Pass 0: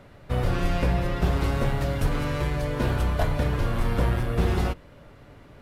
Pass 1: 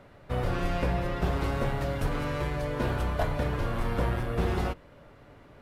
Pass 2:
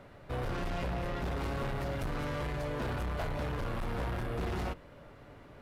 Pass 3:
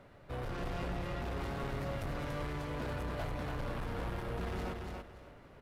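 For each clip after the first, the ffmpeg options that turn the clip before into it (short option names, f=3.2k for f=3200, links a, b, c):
-af "equalizer=f=820:w=0.33:g=4.5,volume=-6dB"
-af "asoftclip=type=tanh:threshold=-31.5dB"
-af "aecho=1:1:286|572|858:0.631|0.151|0.0363,volume=-4.5dB"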